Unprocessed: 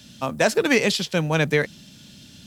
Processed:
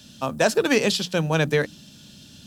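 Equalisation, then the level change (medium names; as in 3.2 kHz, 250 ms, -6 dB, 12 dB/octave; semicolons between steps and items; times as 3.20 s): peaking EQ 2.1 kHz -7.5 dB 0.29 oct; hum notches 60/120/180/240/300 Hz; 0.0 dB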